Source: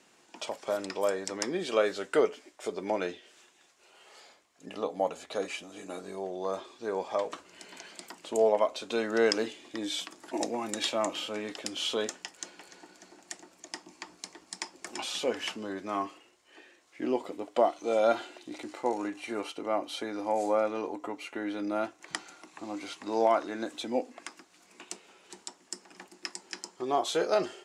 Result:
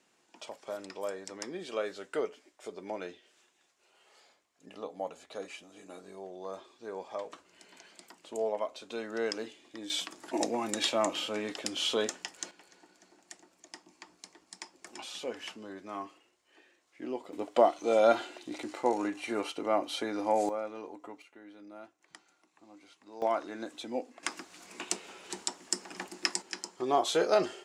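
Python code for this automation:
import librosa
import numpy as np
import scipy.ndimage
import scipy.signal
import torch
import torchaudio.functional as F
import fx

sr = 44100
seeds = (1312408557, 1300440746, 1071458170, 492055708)

y = fx.gain(x, sr, db=fx.steps((0.0, -8.0), (9.9, 1.0), (12.51, -7.5), (17.33, 1.5), (20.49, -9.0), (21.22, -17.5), (23.22, -5.0), (24.23, 8.0), (26.42, 1.0)))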